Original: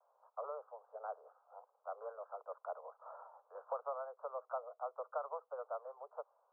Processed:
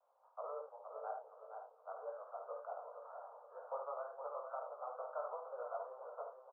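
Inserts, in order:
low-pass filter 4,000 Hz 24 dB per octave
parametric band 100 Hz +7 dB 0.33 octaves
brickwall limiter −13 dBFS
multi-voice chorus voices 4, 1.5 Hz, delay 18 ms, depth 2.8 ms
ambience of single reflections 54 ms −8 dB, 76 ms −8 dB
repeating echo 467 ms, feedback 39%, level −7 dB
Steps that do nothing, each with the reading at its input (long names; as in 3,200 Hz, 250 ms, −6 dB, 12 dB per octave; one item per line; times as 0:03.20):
low-pass filter 4,000 Hz: nothing at its input above 1,500 Hz
parametric band 100 Hz: nothing at its input below 380 Hz
brickwall limiter −13 dBFS: peak of its input −27.5 dBFS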